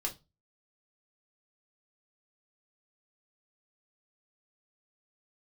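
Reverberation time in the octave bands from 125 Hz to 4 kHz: 0.45 s, 0.30 s, 0.25 s, 0.25 s, 0.20 s, 0.25 s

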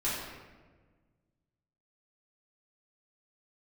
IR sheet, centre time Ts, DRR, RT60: 84 ms, -10.5 dB, 1.4 s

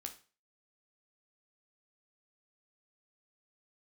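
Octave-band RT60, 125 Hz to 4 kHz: 0.40 s, 0.35 s, 0.35 s, 0.35 s, 0.35 s, 0.35 s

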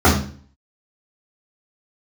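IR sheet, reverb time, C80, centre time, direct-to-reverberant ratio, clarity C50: 0.45 s, 11.0 dB, 30 ms, -10.0 dB, 6.0 dB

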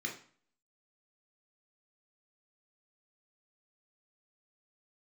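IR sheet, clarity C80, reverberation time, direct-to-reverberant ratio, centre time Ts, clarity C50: 13.5 dB, 0.45 s, 0.0 dB, 23 ms, 9.0 dB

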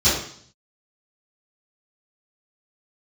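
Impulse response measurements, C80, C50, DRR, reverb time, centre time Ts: 6.5 dB, 2.5 dB, -15.5 dB, 0.60 s, 49 ms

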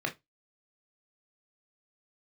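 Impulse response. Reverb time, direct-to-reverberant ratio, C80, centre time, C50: 0.20 s, 2.5 dB, 29.0 dB, 11 ms, 17.0 dB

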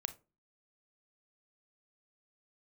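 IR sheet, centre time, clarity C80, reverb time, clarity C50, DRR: 4 ms, 24.5 dB, 0.30 s, 16.0 dB, 10.5 dB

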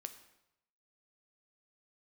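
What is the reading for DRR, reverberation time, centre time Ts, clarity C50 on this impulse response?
8.5 dB, 0.85 s, 9 ms, 12.0 dB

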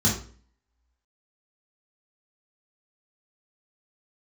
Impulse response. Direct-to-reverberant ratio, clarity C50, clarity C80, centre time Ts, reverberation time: -6.0 dB, 6.0 dB, 10.5 dB, 31 ms, 0.45 s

